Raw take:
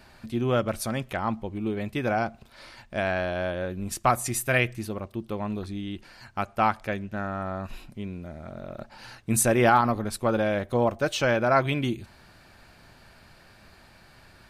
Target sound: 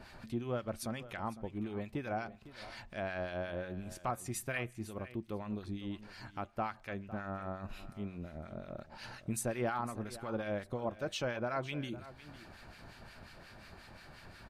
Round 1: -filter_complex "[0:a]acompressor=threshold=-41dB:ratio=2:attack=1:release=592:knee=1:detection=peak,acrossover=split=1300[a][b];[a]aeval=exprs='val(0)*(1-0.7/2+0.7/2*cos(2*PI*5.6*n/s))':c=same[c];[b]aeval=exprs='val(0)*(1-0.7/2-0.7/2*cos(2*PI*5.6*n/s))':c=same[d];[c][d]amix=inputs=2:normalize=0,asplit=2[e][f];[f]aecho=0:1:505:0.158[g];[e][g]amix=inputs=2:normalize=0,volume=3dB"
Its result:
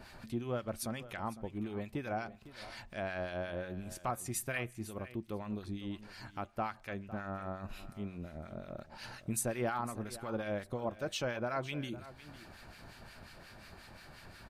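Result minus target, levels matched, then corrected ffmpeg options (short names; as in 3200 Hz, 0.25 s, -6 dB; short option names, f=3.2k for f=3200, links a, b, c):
8000 Hz band +3.0 dB
-filter_complex "[0:a]acompressor=threshold=-41dB:ratio=2:attack=1:release=592:knee=1:detection=peak,highshelf=f=7.8k:g=-6.5,acrossover=split=1300[a][b];[a]aeval=exprs='val(0)*(1-0.7/2+0.7/2*cos(2*PI*5.6*n/s))':c=same[c];[b]aeval=exprs='val(0)*(1-0.7/2-0.7/2*cos(2*PI*5.6*n/s))':c=same[d];[c][d]amix=inputs=2:normalize=0,asplit=2[e][f];[f]aecho=0:1:505:0.158[g];[e][g]amix=inputs=2:normalize=0,volume=3dB"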